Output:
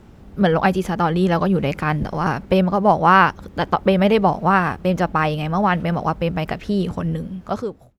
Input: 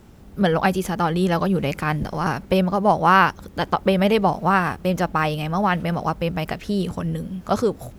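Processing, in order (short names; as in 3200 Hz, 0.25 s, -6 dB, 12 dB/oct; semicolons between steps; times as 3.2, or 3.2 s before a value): ending faded out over 0.85 s; high shelf 5700 Hz -11 dB; gain +2.5 dB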